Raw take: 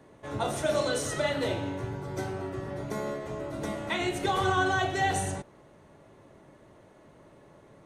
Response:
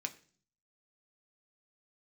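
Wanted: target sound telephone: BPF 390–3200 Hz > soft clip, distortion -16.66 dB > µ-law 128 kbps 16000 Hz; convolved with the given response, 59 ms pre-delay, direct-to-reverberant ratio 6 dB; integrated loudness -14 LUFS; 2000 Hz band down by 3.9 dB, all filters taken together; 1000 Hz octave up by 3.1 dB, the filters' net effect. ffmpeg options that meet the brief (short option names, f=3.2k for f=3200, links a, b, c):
-filter_complex "[0:a]equalizer=f=1k:t=o:g=6.5,equalizer=f=2k:t=o:g=-8.5,asplit=2[a][b];[1:a]atrim=start_sample=2205,adelay=59[c];[b][c]afir=irnorm=-1:irlink=0,volume=-6dB[d];[a][d]amix=inputs=2:normalize=0,highpass=390,lowpass=3.2k,asoftclip=threshold=-20.5dB,volume=17.5dB" -ar 16000 -c:a pcm_mulaw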